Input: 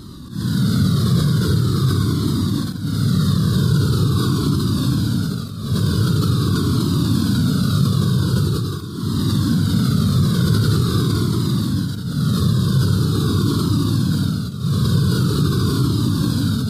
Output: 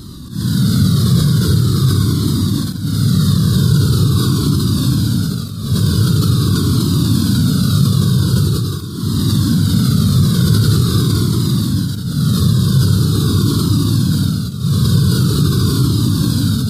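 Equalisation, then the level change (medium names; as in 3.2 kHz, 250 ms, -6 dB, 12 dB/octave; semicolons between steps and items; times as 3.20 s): bass shelf 290 Hz +6.5 dB; treble shelf 3 kHz +9 dB; -1.0 dB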